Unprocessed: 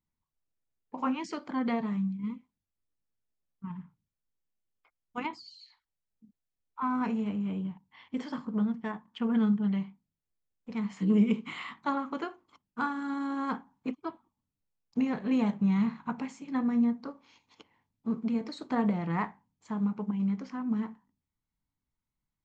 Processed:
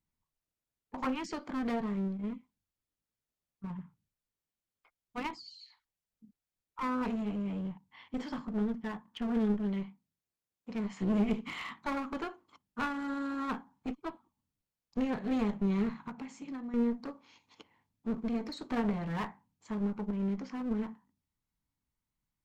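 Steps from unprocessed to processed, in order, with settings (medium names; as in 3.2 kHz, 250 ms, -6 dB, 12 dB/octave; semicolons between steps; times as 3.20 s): 9.54–10.76 s: high-pass 120 Hz 6 dB/octave; 16.07–16.74 s: compression 16:1, threshold -37 dBFS, peak gain reduction 13 dB; one-sided clip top -37.5 dBFS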